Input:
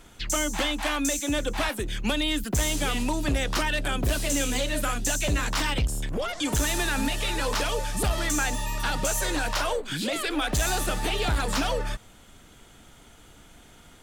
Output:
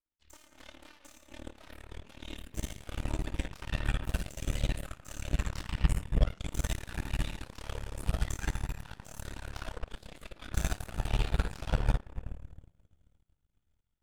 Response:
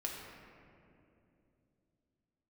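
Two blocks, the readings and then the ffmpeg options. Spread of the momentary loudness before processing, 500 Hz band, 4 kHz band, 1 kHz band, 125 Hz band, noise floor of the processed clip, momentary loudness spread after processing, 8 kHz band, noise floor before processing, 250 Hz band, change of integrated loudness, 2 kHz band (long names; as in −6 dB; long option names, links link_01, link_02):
4 LU, −15.0 dB, −16.5 dB, −15.0 dB, −3.5 dB, −76 dBFS, 18 LU, −18.0 dB, −52 dBFS, −13.0 dB, −10.0 dB, −15.0 dB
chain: -filter_complex "[1:a]atrim=start_sample=2205[link_01];[0:a][link_01]afir=irnorm=-1:irlink=0,asubboost=boost=4.5:cutoff=130,aeval=exprs='0.708*(cos(1*acos(clip(val(0)/0.708,-1,1)))-cos(1*PI/2))+0.224*(cos(3*acos(clip(val(0)/0.708,-1,1)))-cos(3*PI/2))+0.0316*(cos(4*acos(clip(val(0)/0.708,-1,1)))-cos(4*PI/2))+0.00447*(cos(7*acos(clip(val(0)/0.708,-1,1)))-cos(7*PI/2))+0.00501*(cos(8*acos(clip(val(0)/0.708,-1,1)))-cos(8*PI/2))':channel_layout=same,volume=-7dB"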